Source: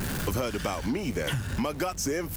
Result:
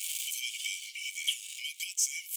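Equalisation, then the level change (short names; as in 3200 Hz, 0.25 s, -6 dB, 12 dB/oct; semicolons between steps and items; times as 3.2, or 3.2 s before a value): rippled Chebyshev high-pass 2200 Hz, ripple 9 dB; +7.5 dB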